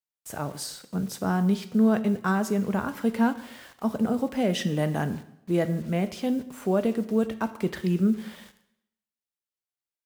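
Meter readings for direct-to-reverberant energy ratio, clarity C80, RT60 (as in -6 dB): 10.5 dB, 16.5 dB, 0.75 s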